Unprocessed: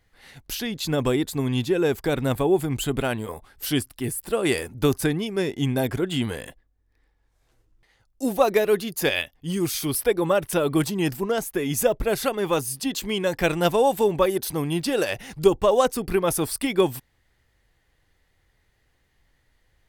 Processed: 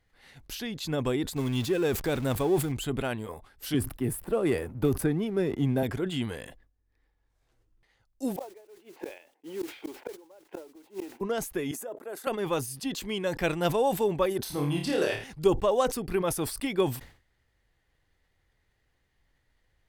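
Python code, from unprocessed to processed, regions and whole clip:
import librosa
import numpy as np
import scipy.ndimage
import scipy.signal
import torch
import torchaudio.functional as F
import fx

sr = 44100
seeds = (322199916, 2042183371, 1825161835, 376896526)

y = fx.chain(x, sr, fx.zero_step(step_db=-32.0),
    fx.high_shelf(hz=5400.0, db=4.5), at=(1.36, 2.72))
y = fx.chain(y, sr, fx.peak_eq(hz=5300.0, db=-14.0, octaves=2.5),
    fx.leveller(passes=1),
    fx.band_squash(depth_pct=40), at=(3.74, 5.83))
y = fx.chain(y, sr, fx.cabinet(low_hz=320.0, low_slope=24, high_hz=2300.0, hz=(320.0, 480.0, 870.0, 1200.0, 1800.0), db=(7, 3, 7, -10, -5)),
    fx.mod_noise(seeds[0], snr_db=14),
    fx.gate_flip(shuts_db=-17.0, range_db=-29), at=(8.36, 11.21))
y = fx.chain(y, sr, fx.level_steps(step_db=15),
    fx.highpass(hz=280.0, slope=24),
    fx.band_shelf(hz=3500.0, db=-9.0, octaves=1.7), at=(11.71, 12.27))
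y = fx.chain(y, sr, fx.high_shelf(hz=9600.0, db=-5.0),
    fx.room_flutter(wall_m=4.7, rt60_s=0.47), at=(14.42, 15.24))
y = fx.high_shelf(y, sr, hz=8000.0, db=-5.0)
y = fx.sustainer(y, sr, db_per_s=120.0)
y = y * 10.0 ** (-6.0 / 20.0)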